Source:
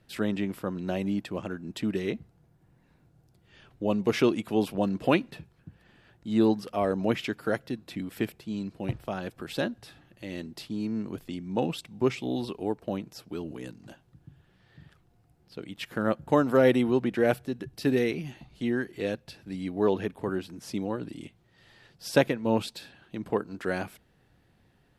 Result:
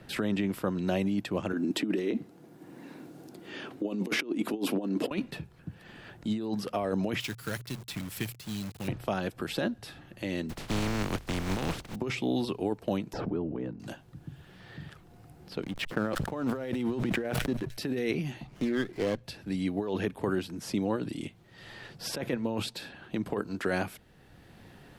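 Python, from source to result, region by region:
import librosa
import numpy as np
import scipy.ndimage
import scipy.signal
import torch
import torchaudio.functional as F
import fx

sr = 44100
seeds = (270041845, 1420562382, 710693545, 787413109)

y = fx.chain(x, sr, fx.over_compress(threshold_db=-32.0, ratio=-0.5),
    fx.highpass_res(hz=280.0, q=2.7), at=(1.53, 5.11))
y = fx.chain(y, sr, fx.curve_eq(hz=(130.0, 240.0, 710.0, 3800.0, 6900.0), db=(0, -13, -18, 1, 5)),
    fx.quant_companded(bits=4), at=(7.2, 8.88))
y = fx.spec_flatten(y, sr, power=0.21, at=(10.49, 11.94), fade=0.02)
y = fx.riaa(y, sr, side='playback', at=(10.49, 11.94), fade=0.02)
y = fx.chain(y, sr, fx.lowpass(hz=1000.0, slope=12),
    fx.pre_swell(db_per_s=35.0), at=(13.13, 13.8))
y = fx.chain(y, sr, fx.backlash(play_db=-40.0),
    fx.echo_wet_highpass(ms=94, feedback_pct=61, hz=4800.0, wet_db=-22.0),
    fx.sustainer(db_per_s=91.0), at=(15.63, 17.77))
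y = fx.chain(y, sr, fx.high_shelf(hz=8400.0, db=-11.5),
    fx.running_max(window=9), at=(18.47, 19.24))
y = fx.over_compress(y, sr, threshold_db=-29.0, ratio=-1.0)
y = fx.hum_notches(y, sr, base_hz=60, count=2)
y = fx.band_squash(y, sr, depth_pct=40)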